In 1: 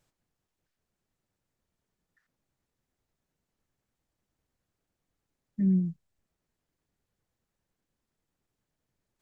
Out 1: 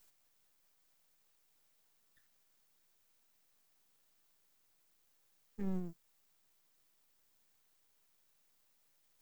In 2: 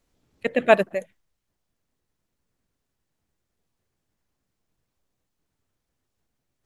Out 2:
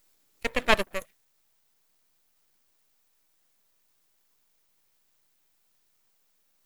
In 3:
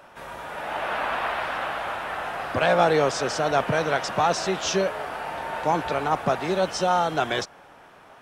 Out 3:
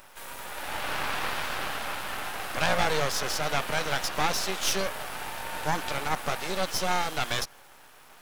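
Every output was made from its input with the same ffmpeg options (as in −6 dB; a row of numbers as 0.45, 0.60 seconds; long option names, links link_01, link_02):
-filter_complex "[0:a]acrossover=split=6100[link_01][link_02];[link_02]acompressor=threshold=-52dB:ratio=4:attack=1:release=60[link_03];[link_01][link_03]amix=inputs=2:normalize=0,aemphasis=mode=production:type=riaa,bandreject=frequency=670:width=14,aeval=exprs='max(val(0),0)':channel_layout=same"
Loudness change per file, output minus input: −14.5, −5.5, −4.5 LU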